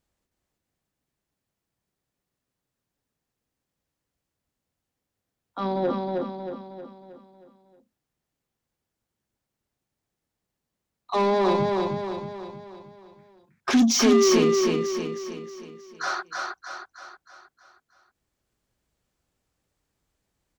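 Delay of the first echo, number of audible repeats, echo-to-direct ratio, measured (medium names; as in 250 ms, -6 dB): 315 ms, 6, -2.0 dB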